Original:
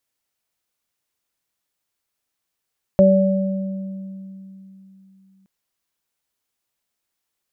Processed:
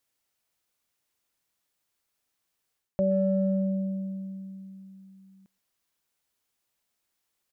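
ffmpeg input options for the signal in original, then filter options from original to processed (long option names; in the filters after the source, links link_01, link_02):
-f lavfi -i "aevalsrc='0.251*pow(10,-3*t/3.54)*sin(2*PI*192*t)+0.075*pow(10,-3*t/0.49)*sin(2*PI*384*t)+0.355*pow(10,-3*t/1.59)*sin(2*PI*576*t)':duration=2.47:sample_rate=44100"
-filter_complex "[0:a]areverse,acompressor=threshold=-24dB:ratio=5,areverse,asplit=2[link_01][link_02];[link_02]adelay=120,highpass=300,lowpass=3400,asoftclip=type=hard:threshold=-29dB,volume=-23dB[link_03];[link_01][link_03]amix=inputs=2:normalize=0"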